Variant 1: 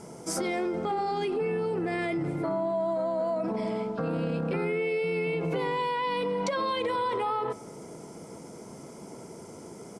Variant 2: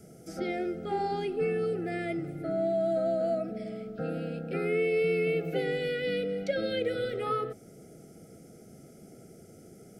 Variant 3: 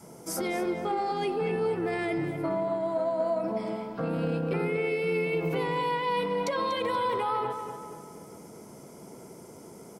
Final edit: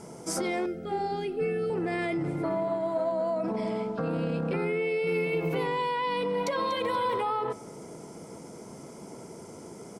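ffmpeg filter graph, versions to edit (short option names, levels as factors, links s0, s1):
-filter_complex "[2:a]asplit=3[s0][s1][s2];[0:a]asplit=5[s3][s4][s5][s6][s7];[s3]atrim=end=0.662[s8];[1:a]atrim=start=0.658:end=1.702[s9];[s4]atrim=start=1.698:end=2.462[s10];[s0]atrim=start=2.458:end=3.122[s11];[s5]atrim=start=3.118:end=5.072[s12];[s1]atrim=start=5.068:end=5.672[s13];[s6]atrim=start=5.668:end=6.342[s14];[s2]atrim=start=6.338:end=7.212[s15];[s7]atrim=start=7.208[s16];[s8][s9]acrossfade=d=0.004:c1=hsin:c2=hsin[s17];[s17][s10]acrossfade=d=0.004:c1=hsin:c2=hsin[s18];[s18][s11]acrossfade=d=0.004:c1=hsin:c2=hsin[s19];[s19][s12]acrossfade=d=0.004:c1=hsin:c2=hsin[s20];[s20][s13]acrossfade=d=0.004:c1=hsin:c2=hsin[s21];[s21][s14]acrossfade=d=0.004:c1=hsin:c2=hsin[s22];[s22][s15]acrossfade=d=0.004:c1=hsin:c2=hsin[s23];[s23][s16]acrossfade=d=0.004:c1=hsin:c2=hsin"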